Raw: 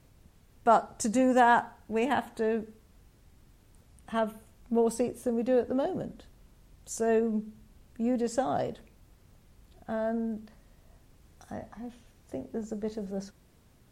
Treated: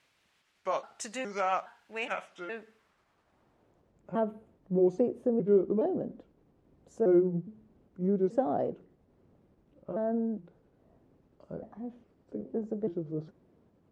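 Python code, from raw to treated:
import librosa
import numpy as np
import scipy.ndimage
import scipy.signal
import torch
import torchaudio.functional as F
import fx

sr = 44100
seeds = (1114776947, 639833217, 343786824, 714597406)

y = fx.pitch_trill(x, sr, semitones=-4.0, every_ms=415)
y = fx.filter_sweep_bandpass(y, sr, from_hz=2500.0, to_hz=360.0, start_s=2.45, end_s=4.04, q=1.0)
y = y * librosa.db_to_amplitude(3.5)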